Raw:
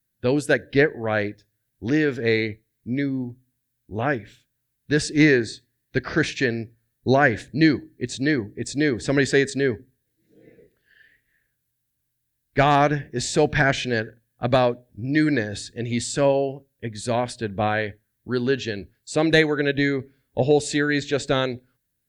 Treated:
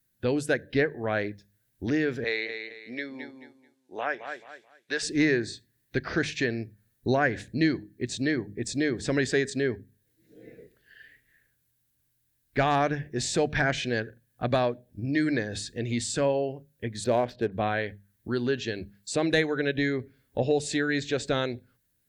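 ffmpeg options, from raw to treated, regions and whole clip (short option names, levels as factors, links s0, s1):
-filter_complex "[0:a]asettb=1/sr,asplit=3[s0][s1][s2];[s0]atrim=end=2.244[s3];[s1]atrim=start=2.24:end=5.03,asetpts=PTS-STARTPTS,afade=t=in:d=0.004:c=qsin,afade=t=out:st=2.786:d=0.004:c=qsin,highpass=620,lowpass=7800,aecho=1:1:217|434|651:0.316|0.0727|0.0167,atrim=end_sample=123039[s4];[s2]atrim=start=5.026[s5];[s3][s4]acrossfade=d=0.004:c1=hsin:c2=qsin[s6];[s6][s5]acrossfade=d=0.004:c1=qsin:c2=hsin,asettb=1/sr,asplit=3[s7][s8][s9];[s7]atrim=end=17.044[s10];[s8]atrim=start=17.04:end=17.52,asetpts=PTS-STARTPTS,afade=t=in:d=0.004:c=qsin,afade=t=out:st=0.476:d=0.004:c=qsin,lowpass=4500,equalizer=f=480:w=0.9:g=7.5,adynamicsmooth=sensitivity=7:basefreq=2900[s11];[s9]atrim=start=17.516[s12];[s10][s11]acrossfade=d=0.004:c1=hsin:c2=qsin[s13];[s13][s12]acrossfade=d=0.004:c1=qsin:c2=hsin,bandreject=f=50:t=h:w=6,bandreject=f=100:t=h:w=6,bandreject=f=150:t=h:w=6,bandreject=f=200:t=h:w=6,acompressor=threshold=0.00891:ratio=1.5,volume=1.41"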